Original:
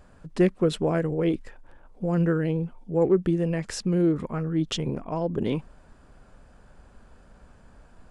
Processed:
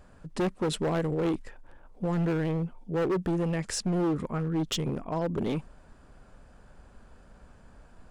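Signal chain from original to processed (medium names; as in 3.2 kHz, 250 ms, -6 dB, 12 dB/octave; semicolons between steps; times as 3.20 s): dynamic bell 8.9 kHz, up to +5 dB, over -56 dBFS, Q 0.82; hard clipper -23 dBFS, distortion -9 dB; trim -1 dB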